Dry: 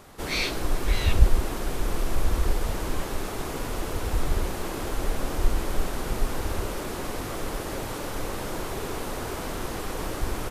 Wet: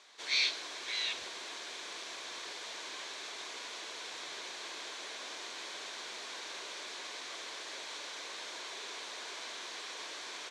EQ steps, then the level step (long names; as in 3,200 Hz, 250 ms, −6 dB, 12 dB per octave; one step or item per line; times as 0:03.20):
loudspeaker in its box 460–5,200 Hz, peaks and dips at 530 Hz −4 dB, 810 Hz −7 dB, 1,300 Hz −10 dB, 1,900 Hz −4 dB, 2,800 Hz −7 dB, 5,000 Hz −7 dB
spectral tilt +2.5 dB per octave
tilt shelving filter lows −6.5 dB
−6.0 dB